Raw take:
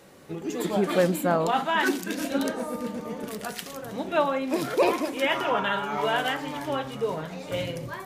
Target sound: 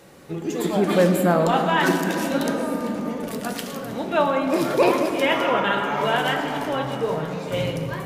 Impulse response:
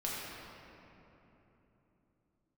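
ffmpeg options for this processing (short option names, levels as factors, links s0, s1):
-filter_complex "[0:a]asplit=2[s0][s1];[1:a]atrim=start_sample=2205,asetrate=42336,aresample=44100,lowshelf=f=210:g=5.5[s2];[s1][s2]afir=irnorm=-1:irlink=0,volume=0.531[s3];[s0][s3]amix=inputs=2:normalize=0"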